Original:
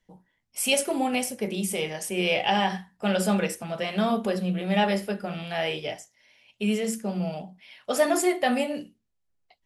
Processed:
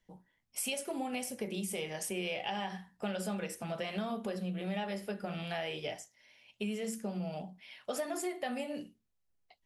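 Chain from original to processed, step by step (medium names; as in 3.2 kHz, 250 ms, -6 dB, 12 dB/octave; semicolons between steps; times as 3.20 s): compression 6:1, threshold -31 dBFS, peak gain reduction 14 dB; trim -3 dB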